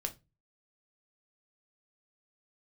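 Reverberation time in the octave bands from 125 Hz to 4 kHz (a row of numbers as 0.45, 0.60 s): 0.50, 0.35, 0.25, 0.20, 0.20, 0.20 s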